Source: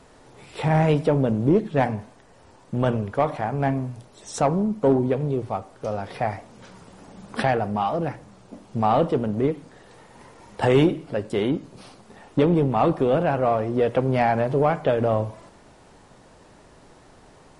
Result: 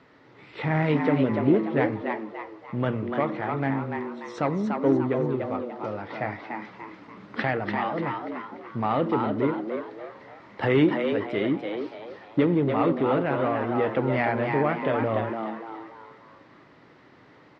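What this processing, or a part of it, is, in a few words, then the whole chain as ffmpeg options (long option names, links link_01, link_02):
frequency-shifting delay pedal into a guitar cabinet: -filter_complex "[0:a]asplit=6[link_01][link_02][link_03][link_04][link_05][link_06];[link_02]adelay=292,afreqshift=110,volume=-5dB[link_07];[link_03]adelay=584,afreqshift=220,volume=-13dB[link_08];[link_04]adelay=876,afreqshift=330,volume=-20.9dB[link_09];[link_05]adelay=1168,afreqshift=440,volume=-28.9dB[link_10];[link_06]adelay=1460,afreqshift=550,volume=-36.8dB[link_11];[link_01][link_07][link_08][link_09][link_10][link_11]amix=inputs=6:normalize=0,highpass=110,equalizer=frequency=120:width_type=q:width=4:gain=3,equalizer=frequency=300:width_type=q:width=4:gain=6,equalizer=frequency=720:width_type=q:width=4:gain=-4,equalizer=frequency=1300:width_type=q:width=4:gain=4,equalizer=frequency=2000:width_type=q:width=4:gain=9,lowpass=frequency=4500:width=0.5412,lowpass=frequency=4500:width=1.3066,volume=-5dB"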